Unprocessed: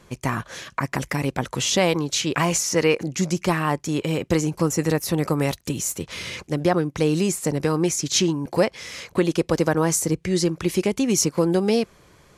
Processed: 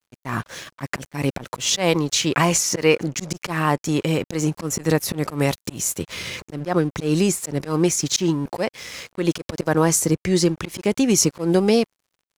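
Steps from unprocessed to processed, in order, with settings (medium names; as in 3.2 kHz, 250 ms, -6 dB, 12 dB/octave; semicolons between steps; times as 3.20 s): slow attack 122 ms; crossover distortion -45 dBFS; trim +3.5 dB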